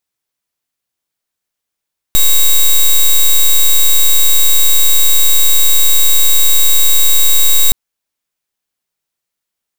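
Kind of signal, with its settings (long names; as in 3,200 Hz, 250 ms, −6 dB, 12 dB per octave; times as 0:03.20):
pulse wave 3,810 Hz, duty 8% −6.5 dBFS 5.57 s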